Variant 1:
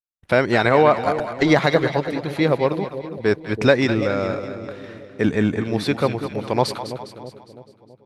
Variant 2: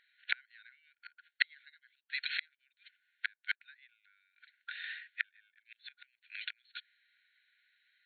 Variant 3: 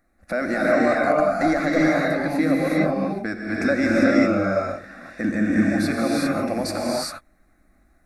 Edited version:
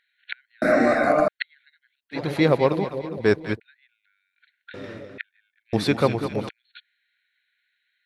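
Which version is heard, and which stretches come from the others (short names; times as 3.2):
2
0.62–1.28 from 3
2.16–3.55 from 1, crossfade 0.10 s
4.74–5.18 from 1
5.73–6.49 from 1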